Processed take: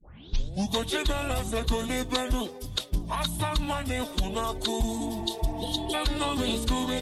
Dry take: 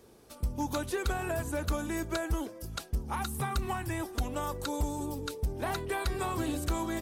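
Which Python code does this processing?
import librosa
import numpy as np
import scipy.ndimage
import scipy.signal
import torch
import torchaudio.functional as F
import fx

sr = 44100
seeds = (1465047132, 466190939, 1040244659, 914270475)

y = fx.tape_start_head(x, sr, length_s=0.7)
y = fx.peak_eq(y, sr, hz=3500.0, db=13.5, octaves=0.46)
y = fx.notch(y, sr, hz=1700.0, q=8.6)
y = fx.pitch_keep_formants(y, sr, semitones=-4.5)
y = fx.spec_repair(y, sr, seeds[0], start_s=4.93, length_s=0.98, low_hz=500.0, high_hz=2800.0, source='before')
y = y * 10.0 ** (4.5 / 20.0)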